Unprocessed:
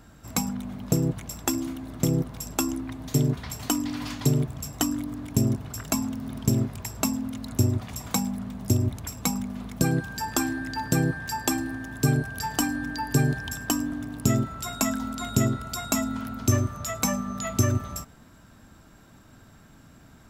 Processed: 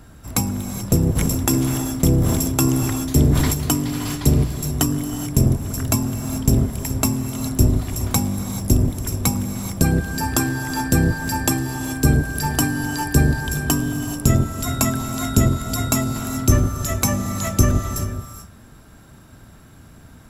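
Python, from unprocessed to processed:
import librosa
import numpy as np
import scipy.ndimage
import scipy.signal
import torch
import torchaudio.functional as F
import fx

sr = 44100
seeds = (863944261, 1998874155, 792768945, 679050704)

y = fx.octave_divider(x, sr, octaves=1, level_db=0.0)
y = fx.peak_eq(y, sr, hz=11000.0, db=11.0, octaves=0.27)
y = fx.rev_gated(y, sr, seeds[0], gate_ms=460, shape='rising', drr_db=8.0)
y = fx.sustainer(y, sr, db_per_s=21.0, at=(1.15, 3.53), fade=0.02)
y = y * 10.0 ** (4.0 / 20.0)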